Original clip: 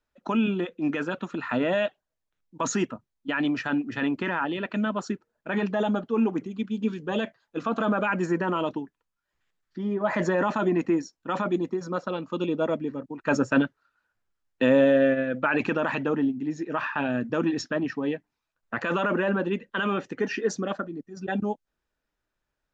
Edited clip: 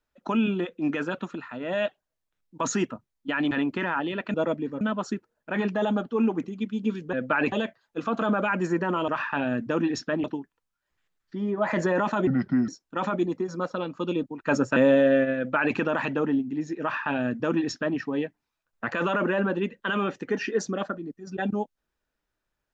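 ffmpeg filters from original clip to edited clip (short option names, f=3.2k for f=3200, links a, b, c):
-filter_complex "[0:a]asplit=14[a][b][c][d][e][f][g][h][i][j][k][l][m][n];[a]atrim=end=1.5,asetpts=PTS-STARTPTS,afade=t=out:st=1.25:d=0.25:silence=0.281838[o];[b]atrim=start=1.5:end=1.6,asetpts=PTS-STARTPTS,volume=-11dB[p];[c]atrim=start=1.6:end=3.512,asetpts=PTS-STARTPTS,afade=t=in:d=0.25:silence=0.281838[q];[d]atrim=start=3.958:end=4.792[r];[e]atrim=start=12.558:end=13.032[s];[f]atrim=start=4.788:end=7.112[t];[g]atrim=start=15.258:end=15.652[u];[h]atrim=start=7.108:end=8.672[v];[i]atrim=start=16.708:end=17.872[w];[j]atrim=start=8.668:end=10.704[x];[k]atrim=start=10.7:end=11.01,asetpts=PTS-STARTPTS,asetrate=33075,aresample=44100[y];[l]atrim=start=11.006:end=12.562[z];[m]atrim=start=13.028:end=13.562[aa];[n]atrim=start=14.658[ab];[o][p][q]concat=n=3:v=0:a=1[ac];[ac][r]acrossfade=d=0.004:c1=hsin:c2=hsin[ad];[ad][s]acrossfade=d=0.004:c1=hsin:c2=hsin[ae];[ae][t]acrossfade=d=0.004:c1=hsin:c2=hsin[af];[af][u]acrossfade=d=0.004:c1=hsin:c2=hsin[ag];[ag][v]acrossfade=d=0.004:c1=hsin:c2=hsin[ah];[ah][w]acrossfade=d=0.004:c1=hsin:c2=hsin[ai];[ai][x]acrossfade=d=0.004:c1=hsin:c2=hsin[aj];[aj][y]acrossfade=d=0.004:c1=hsin:c2=hsin[ak];[ak][z]acrossfade=d=0.004:c1=hsin:c2=hsin[al];[al][aa]acrossfade=d=0.004:c1=hsin:c2=hsin[am];[am][ab]acrossfade=d=0.004:c1=hsin:c2=hsin"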